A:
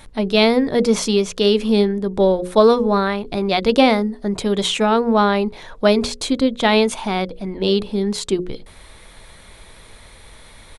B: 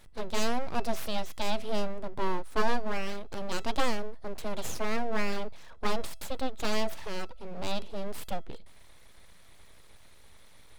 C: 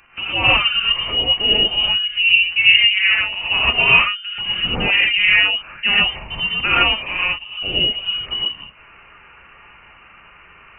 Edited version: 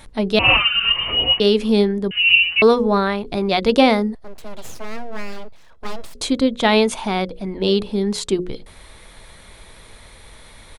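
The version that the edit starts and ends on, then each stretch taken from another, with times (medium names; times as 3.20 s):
A
0.39–1.40 s: from C
2.11–2.62 s: from C
4.15–6.15 s: from B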